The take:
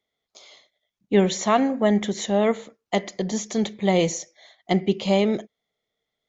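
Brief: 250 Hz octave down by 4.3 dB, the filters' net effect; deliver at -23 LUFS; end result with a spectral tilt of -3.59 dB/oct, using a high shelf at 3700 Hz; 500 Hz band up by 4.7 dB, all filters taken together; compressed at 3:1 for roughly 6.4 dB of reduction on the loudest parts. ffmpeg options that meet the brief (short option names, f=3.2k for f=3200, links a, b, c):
-af "equalizer=f=250:t=o:g=-8.5,equalizer=f=500:t=o:g=8.5,highshelf=f=3.7k:g=3.5,acompressor=threshold=-20dB:ratio=3,volume=2.5dB"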